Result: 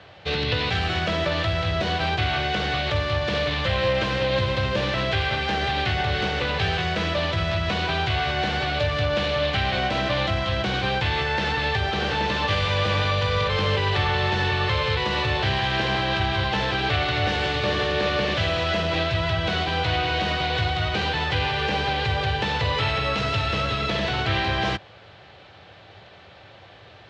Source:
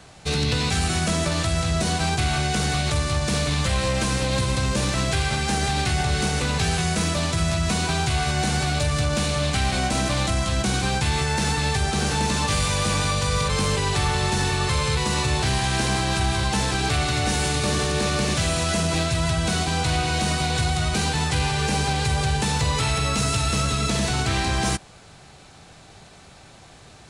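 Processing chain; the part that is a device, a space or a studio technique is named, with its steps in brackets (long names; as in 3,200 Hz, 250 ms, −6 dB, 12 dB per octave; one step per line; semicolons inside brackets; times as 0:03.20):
guitar cabinet (loudspeaker in its box 87–4,000 Hz, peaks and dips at 100 Hz +6 dB, 150 Hz −8 dB, 240 Hz −9 dB, 550 Hz +6 dB, 1,800 Hz +4 dB, 3,100 Hz +5 dB)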